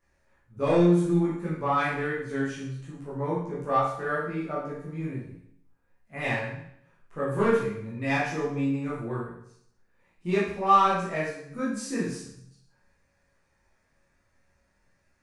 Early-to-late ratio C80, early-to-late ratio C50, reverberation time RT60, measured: 5.5 dB, 2.0 dB, 0.70 s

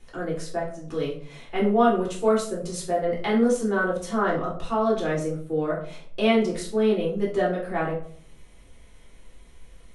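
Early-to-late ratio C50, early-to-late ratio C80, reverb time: 6.5 dB, 12.0 dB, 0.55 s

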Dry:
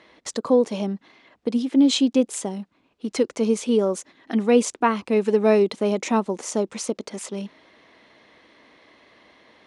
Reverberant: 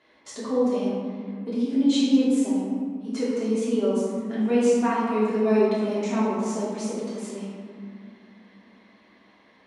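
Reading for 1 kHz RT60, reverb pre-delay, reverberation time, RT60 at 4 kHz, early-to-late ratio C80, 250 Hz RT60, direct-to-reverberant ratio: 2.2 s, 3 ms, 2.4 s, 1.0 s, 0.5 dB, 3.9 s, −9.5 dB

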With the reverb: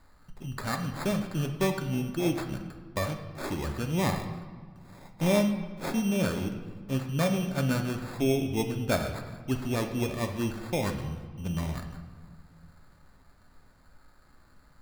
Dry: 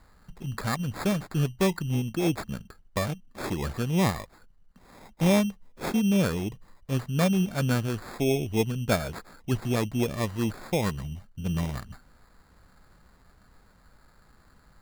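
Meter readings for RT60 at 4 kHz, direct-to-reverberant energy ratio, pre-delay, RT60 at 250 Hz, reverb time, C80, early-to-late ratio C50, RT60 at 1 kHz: 1.1 s, 4.0 dB, 3 ms, 2.3 s, 1.7 s, 10.0 dB, 8.0 dB, 1.7 s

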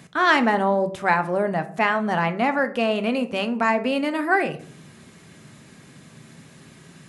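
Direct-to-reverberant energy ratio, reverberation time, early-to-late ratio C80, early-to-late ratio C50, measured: 8.5 dB, 0.55 s, 19.0 dB, 15.5 dB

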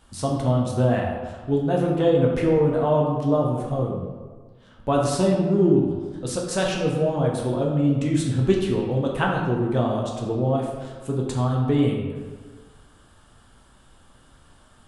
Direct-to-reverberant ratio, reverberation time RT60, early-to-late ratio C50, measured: −2.0 dB, 1.5 s, 2.0 dB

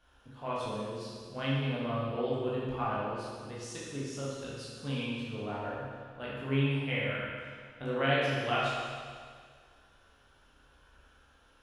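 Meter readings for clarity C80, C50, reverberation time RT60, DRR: 0.0 dB, −2.5 dB, 1.9 s, −8.0 dB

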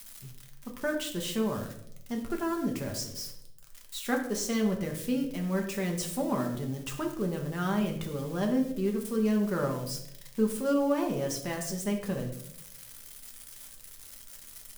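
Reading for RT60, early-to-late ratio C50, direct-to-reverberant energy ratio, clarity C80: 0.75 s, 7.5 dB, 1.5 dB, 10.5 dB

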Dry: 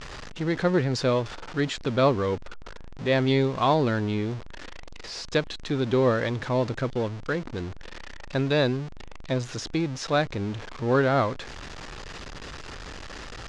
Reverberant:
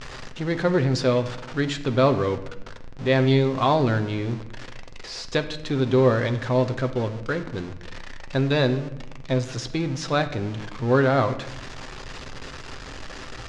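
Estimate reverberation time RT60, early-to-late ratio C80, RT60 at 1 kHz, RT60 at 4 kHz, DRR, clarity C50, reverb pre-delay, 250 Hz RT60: 0.85 s, 15.0 dB, 0.75 s, 0.55 s, 7.5 dB, 12.0 dB, 8 ms, 1.2 s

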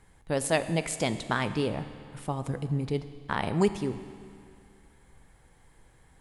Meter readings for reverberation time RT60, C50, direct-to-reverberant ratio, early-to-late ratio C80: 2.3 s, 12.0 dB, 10.5 dB, 12.5 dB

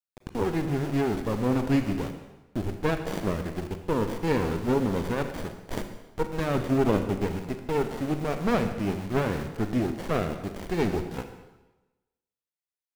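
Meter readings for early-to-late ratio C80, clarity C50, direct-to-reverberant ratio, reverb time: 10.0 dB, 8.5 dB, 7.0 dB, 1.1 s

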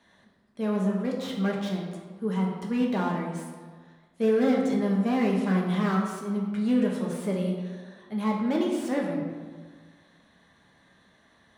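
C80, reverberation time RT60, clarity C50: 4.5 dB, 1.5 s, 2.5 dB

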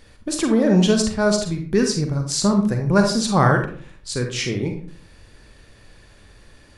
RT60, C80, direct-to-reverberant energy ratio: 0.50 s, 11.0 dB, 4.0 dB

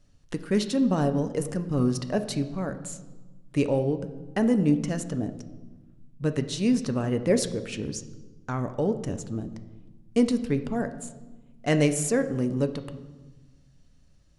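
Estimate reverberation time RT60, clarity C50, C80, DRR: 1.2 s, 12.0 dB, 14.0 dB, 8.5 dB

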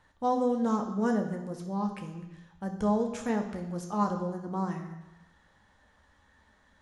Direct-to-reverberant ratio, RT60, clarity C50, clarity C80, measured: 3.0 dB, 1.0 s, 8.0 dB, 10.5 dB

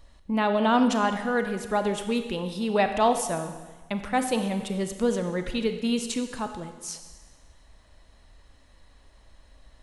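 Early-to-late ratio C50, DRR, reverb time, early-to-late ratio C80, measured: 8.5 dB, 7.5 dB, 1.3 s, 10.0 dB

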